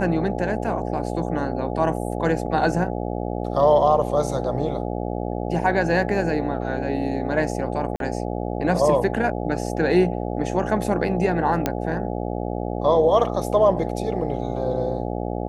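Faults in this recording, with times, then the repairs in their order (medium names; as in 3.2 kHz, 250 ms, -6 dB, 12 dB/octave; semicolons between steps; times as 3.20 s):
buzz 60 Hz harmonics 14 -27 dBFS
7.96–8.00 s: dropout 42 ms
11.66 s: pop -7 dBFS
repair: de-click; de-hum 60 Hz, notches 14; interpolate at 7.96 s, 42 ms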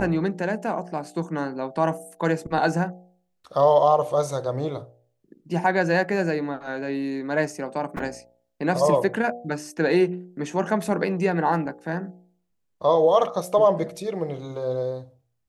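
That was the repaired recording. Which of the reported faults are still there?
nothing left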